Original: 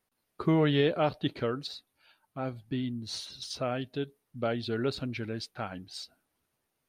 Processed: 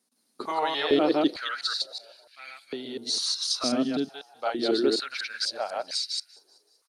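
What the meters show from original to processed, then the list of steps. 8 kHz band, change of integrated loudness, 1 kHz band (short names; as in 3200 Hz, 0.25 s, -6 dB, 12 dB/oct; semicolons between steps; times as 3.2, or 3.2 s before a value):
+13.5 dB, +5.0 dB, +6.0 dB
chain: reverse delay 0.124 s, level -0.5 dB; band shelf 6400 Hz +12 dB; on a send: frequency-shifting echo 0.19 s, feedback 53%, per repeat +35 Hz, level -23 dB; on the sum: stepped high-pass 2.2 Hz 240–2100 Hz; gain -1.5 dB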